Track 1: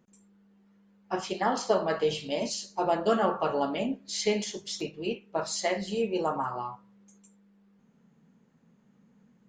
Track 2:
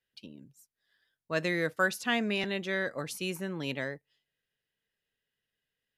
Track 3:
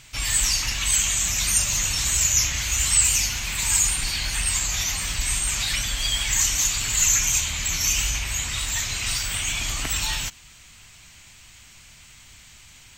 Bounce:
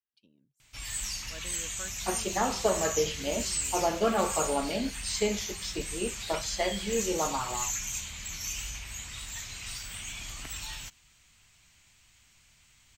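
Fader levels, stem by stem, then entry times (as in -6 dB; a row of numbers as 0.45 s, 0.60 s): -1.5 dB, -17.5 dB, -13.5 dB; 0.95 s, 0.00 s, 0.60 s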